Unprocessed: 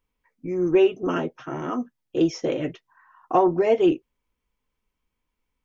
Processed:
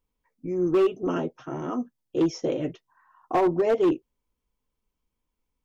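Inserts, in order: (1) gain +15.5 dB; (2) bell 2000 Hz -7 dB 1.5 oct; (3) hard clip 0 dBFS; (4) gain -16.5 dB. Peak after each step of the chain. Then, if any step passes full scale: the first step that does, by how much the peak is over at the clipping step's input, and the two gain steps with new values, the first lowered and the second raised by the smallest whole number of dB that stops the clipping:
+7.5, +7.0, 0.0, -16.5 dBFS; step 1, 7.0 dB; step 1 +8.5 dB, step 4 -9.5 dB

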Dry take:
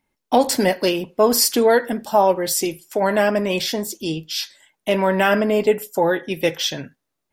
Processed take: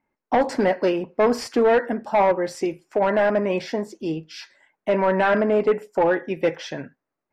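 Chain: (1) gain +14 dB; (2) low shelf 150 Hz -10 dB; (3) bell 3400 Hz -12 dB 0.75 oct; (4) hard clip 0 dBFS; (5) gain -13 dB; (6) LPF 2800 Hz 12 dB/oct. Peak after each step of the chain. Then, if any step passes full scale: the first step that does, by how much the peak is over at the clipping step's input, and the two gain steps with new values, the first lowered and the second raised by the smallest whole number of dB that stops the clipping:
+10.0, +9.5, +9.0, 0.0, -13.0, -12.5 dBFS; step 1, 9.0 dB; step 1 +5 dB, step 5 -4 dB

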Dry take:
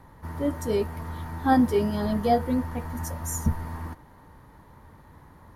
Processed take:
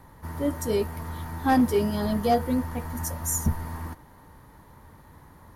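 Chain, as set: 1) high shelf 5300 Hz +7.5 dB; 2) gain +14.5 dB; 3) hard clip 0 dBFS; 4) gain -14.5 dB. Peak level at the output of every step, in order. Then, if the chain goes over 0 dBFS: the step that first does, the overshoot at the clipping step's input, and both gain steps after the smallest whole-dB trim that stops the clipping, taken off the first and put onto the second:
-9.0, +5.5, 0.0, -14.5 dBFS; step 2, 5.5 dB; step 2 +8.5 dB, step 4 -8.5 dB

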